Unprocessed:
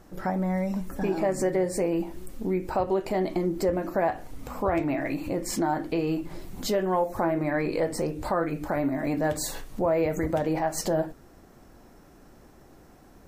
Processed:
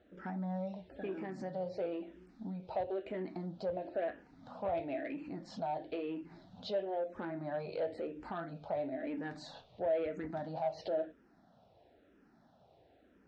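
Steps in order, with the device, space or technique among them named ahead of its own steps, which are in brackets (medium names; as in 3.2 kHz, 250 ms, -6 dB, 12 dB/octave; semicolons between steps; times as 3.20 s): barber-pole phaser into a guitar amplifier (barber-pole phaser -1 Hz; saturation -21 dBFS, distortion -18 dB; cabinet simulation 99–4100 Hz, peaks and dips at 140 Hz -5 dB, 340 Hz -4 dB, 650 Hz +6 dB, 1.1 kHz -8 dB, 2.1 kHz -4 dB, 3.7 kHz +5 dB); trim -8 dB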